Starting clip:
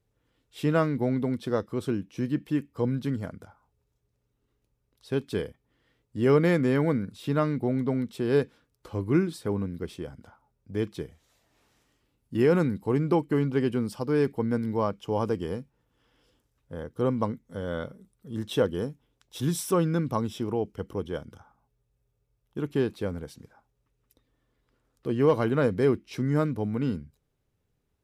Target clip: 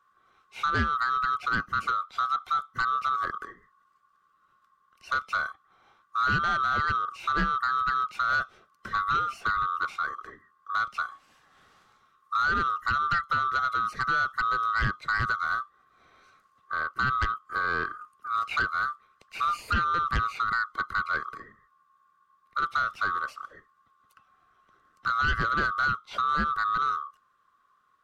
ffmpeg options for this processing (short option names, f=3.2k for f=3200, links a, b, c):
-filter_complex "[0:a]afftfilt=real='real(if(lt(b,960),b+48*(1-2*mod(floor(b/48),2)),b),0)':imag='imag(if(lt(b,960),b+48*(1-2*mod(floor(b/48),2)),b),0)':win_size=2048:overlap=0.75,acrossover=split=2700[a][b];[b]acompressor=threshold=-50dB:ratio=4:attack=1:release=60[c];[a][c]amix=inputs=2:normalize=0,aemphasis=mode=reproduction:type=50kf,acrossover=split=220|3000[d][e][f];[e]acompressor=threshold=-31dB:ratio=8[g];[d][g][f]amix=inputs=3:normalize=0,asplit=2[h][i];[i]aeval=exprs='0.141*sin(PI/2*3.55*val(0)/0.141)':c=same,volume=-9.5dB[j];[h][j]amix=inputs=2:normalize=0"